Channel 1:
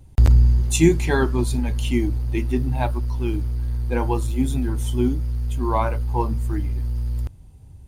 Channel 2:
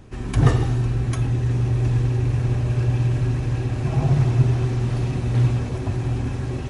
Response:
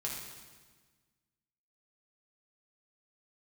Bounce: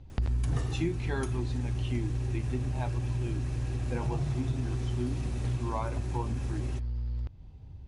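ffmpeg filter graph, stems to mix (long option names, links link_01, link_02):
-filter_complex "[0:a]lowpass=frequency=4900:width=0.5412,lowpass=frequency=4900:width=1.3066,volume=-2.5dB[link_01];[1:a]highshelf=frequency=5600:gain=11,adelay=100,volume=-3dB[link_02];[link_01][link_02]amix=inputs=2:normalize=0,acompressor=threshold=-33dB:ratio=2.5"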